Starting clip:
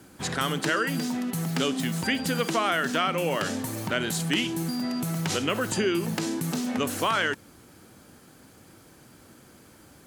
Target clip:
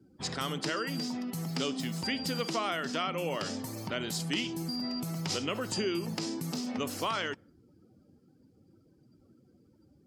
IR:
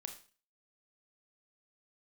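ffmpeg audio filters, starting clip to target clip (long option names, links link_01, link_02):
-af "afftdn=noise_reduction=23:noise_floor=-48,equalizer=frequency=1600:width_type=o:width=0.33:gain=-6,equalizer=frequency=5000:width_type=o:width=0.33:gain=10,equalizer=frequency=10000:width_type=o:width=0.33:gain=-4,volume=-6.5dB"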